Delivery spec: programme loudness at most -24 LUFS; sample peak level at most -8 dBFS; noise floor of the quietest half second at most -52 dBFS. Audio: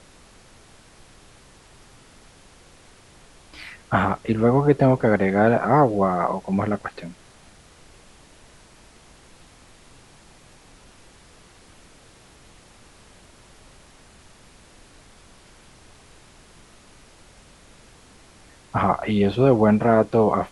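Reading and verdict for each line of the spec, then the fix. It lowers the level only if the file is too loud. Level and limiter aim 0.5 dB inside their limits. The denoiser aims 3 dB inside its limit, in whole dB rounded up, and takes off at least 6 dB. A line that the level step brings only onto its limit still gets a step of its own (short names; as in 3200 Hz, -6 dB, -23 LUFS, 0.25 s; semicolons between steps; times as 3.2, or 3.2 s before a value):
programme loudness -20.0 LUFS: fail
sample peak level -4.5 dBFS: fail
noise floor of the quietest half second -51 dBFS: fail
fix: gain -4.5 dB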